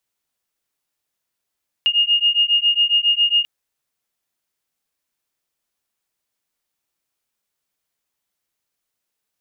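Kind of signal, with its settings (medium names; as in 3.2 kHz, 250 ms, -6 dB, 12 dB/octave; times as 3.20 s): beating tones 2.84 kHz, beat 7.3 Hz, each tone -17 dBFS 1.59 s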